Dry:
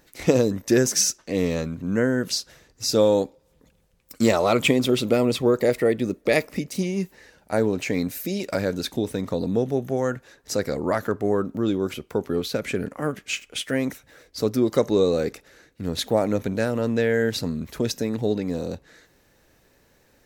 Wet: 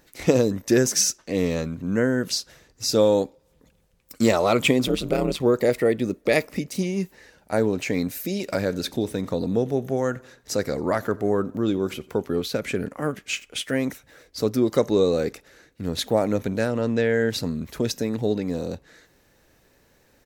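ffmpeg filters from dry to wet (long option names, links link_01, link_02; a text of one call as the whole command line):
ffmpeg -i in.wav -filter_complex "[0:a]asettb=1/sr,asplit=3[link_01][link_02][link_03];[link_01]atrim=end=4.874[link_04];[link_02]atrim=start=4.87:end=5.4,asetpts=PTS-STARTPTS,afade=type=in:duration=0.004:curve=qsin,afade=type=out:start_time=0.526:duration=0.004:curve=qsin,aeval=exprs='val(0)*sin(2*PI*77*n/s)':channel_layout=same[link_05];[link_03]atrim=start=5.396[link_06];[link_04][link_05]acrossfade=duration=0.004:curve1=hsin:curve2=qsin[link_07];[link_07][link_06]acrossfade=duration=0.004:curve1=qsin:curve2=hsin,asplit=3[link_08][link_09][link_10];[link_08]afade=type=out:start_time=8.46:duration=0.02[link_11];[link_09]aecho=1:1:89|178|267:0.0708|0.0368|0.0191,afade=type=in:start_time=8.46:duration=0.02,afade=type=out:start_time=12.22:duration=0.02[link_12];[link_10]afade=type=in:start_time=12.22:duration=0.02[link_13];[link_11][link_12][link_13]amix=inputs=3:normalize=0,asettb=1/sr,asplit=3[link_14][link_15][link_16];[link_14]atrim=end=16.674[link_17];[link_15]atrim=start=16.67:end=17.3,asetpts=PTS-STARTPTS,afade=type=in:duration=0.004:curve=qsin,afade=type=out:start_time=0.626:duration=0.004:curve=qsin,lowpass=7900[link_18];[link_16]atrim=start=17.296[link_19];[link_17][link_18]acrossfade=duration=0.004:curve1=hsin:curve2=qsin[link_20];[link_20][link_19]acrossfade=duration=0.004:curve1=qsin:curve2=hsin" out.wav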